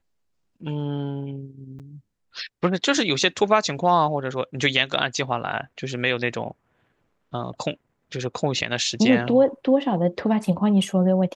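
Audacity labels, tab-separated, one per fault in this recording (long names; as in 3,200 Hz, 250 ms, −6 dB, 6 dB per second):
1.790000	1.800000	drop-out 7.9 ms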